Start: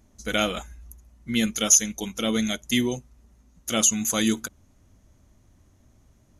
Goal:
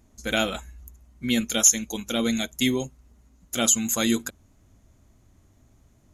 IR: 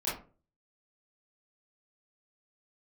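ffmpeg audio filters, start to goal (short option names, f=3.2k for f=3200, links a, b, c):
-af "asetrate=45938,aresample=44100"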